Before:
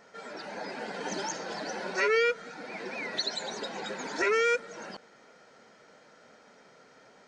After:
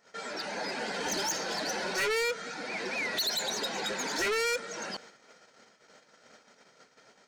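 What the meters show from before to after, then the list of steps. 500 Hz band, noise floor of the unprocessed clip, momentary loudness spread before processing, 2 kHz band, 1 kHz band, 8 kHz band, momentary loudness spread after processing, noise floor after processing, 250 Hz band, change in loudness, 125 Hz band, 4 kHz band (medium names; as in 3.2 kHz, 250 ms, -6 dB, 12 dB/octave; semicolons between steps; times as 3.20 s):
-3.5 dB, -58 dBFS, 17 LU, -0.5 dB, -1.0 dB, +7.0 dB, 9 LU, -63 dBFS, 0.0 dB, -0.5 dB, +1.0 dB, +4.0 dB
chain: gate -55 dBFS, range -16 dB; treble shelf 2.4 kHz +9 dB; saturation -29 dBFS, distortion -5 dB; trim +2.5 dB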